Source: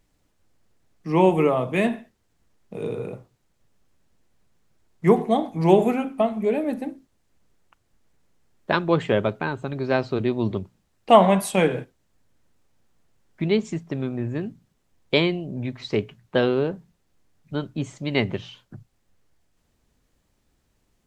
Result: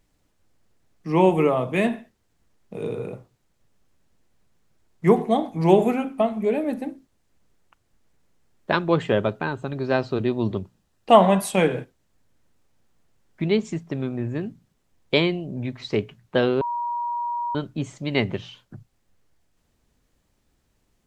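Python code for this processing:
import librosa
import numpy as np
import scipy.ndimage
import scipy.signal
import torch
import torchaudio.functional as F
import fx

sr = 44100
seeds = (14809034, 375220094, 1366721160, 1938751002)

y = fx.notch(x, sr, hz=2200.0, q=12.0, at=(9.01, 11.42))
y = fx.edit(y, sr, fx.bleep(start_s=16.61, length_s=0.94, hz=954.0, db=-24.0), tone=tone)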